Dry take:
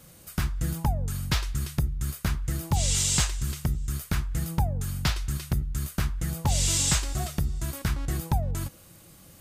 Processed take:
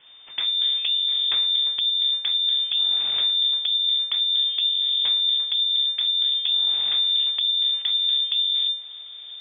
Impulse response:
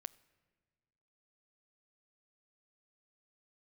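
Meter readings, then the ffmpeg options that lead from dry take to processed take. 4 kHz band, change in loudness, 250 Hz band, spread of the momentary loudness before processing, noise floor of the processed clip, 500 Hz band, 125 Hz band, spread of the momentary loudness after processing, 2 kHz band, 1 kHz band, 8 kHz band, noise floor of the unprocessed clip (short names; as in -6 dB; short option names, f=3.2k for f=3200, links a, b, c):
+19.5 dB, +9.0 dB, under -25 dB, 8 LU, -40 dBFS, under -10 dB, under -35 dB, 2 LU, -4.0 dB, under -10 dB, under -40 dB, -52 dBFS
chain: -filter_complex "[0:a]asubboost=boost=6:cutoff=140,acompressor=threshold=-24dB:ratio=12,aeval=exprs='abs(val(0))':c=same,asplit=2[a][b];[1:a]atrim=start_sample=2205[c];[b][c]afir=irnorm=-1:irlink=0,volume=0dB[d];[a][d]amix=inputs=2:normalize=0,lowpass=f=3.1k:t=q:w=0.5098,lowpass=f=3.1k:t=q:w=0.6013,lowpass=f=3.1k:t=q:w=0.9,lowpass=f=3.1k:t=q:w=2.563,afreqshift=-3600"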